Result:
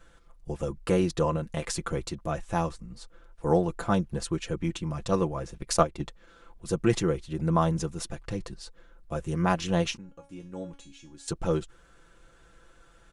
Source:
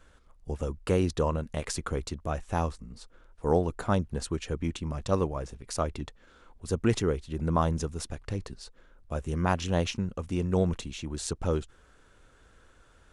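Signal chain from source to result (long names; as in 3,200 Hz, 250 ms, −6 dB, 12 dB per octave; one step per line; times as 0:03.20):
comb filter 5.9 ms, depth 67%
0:05.57–0:06.02: transient designer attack +9 dB, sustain −8 dB
0:09.97–0:11.28: tuned comb filter 280 Hz, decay 0.33 s, harmonics all, mix 90%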